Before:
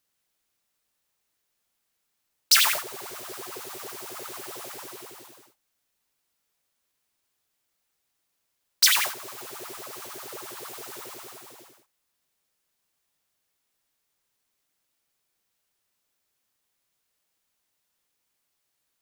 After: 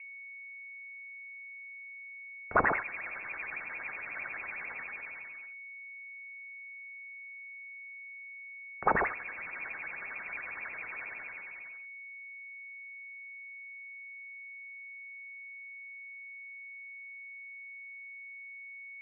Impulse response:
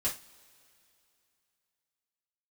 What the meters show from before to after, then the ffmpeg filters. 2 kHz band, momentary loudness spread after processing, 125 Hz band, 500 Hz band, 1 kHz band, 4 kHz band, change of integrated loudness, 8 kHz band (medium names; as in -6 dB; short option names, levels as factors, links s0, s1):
+0.5 dB, 11 LU, +6.5 dB, +2.0 dB, +2.5 dB, under -40 dB, -15.0 dB, under -40 dB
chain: -af "aeval=exprs='val(0)+0.00562*sin(2*PI*580*n/s)':c=same,lowpass=f=2400:t=q:w=0.5098,lowpass=f=2400:t=q:w=0.6013,lowpass=f=2400:t=q:w=0.9,lowpass=f=2400:t=q:w=2.563,afreqshift=-2800,volume=1.12"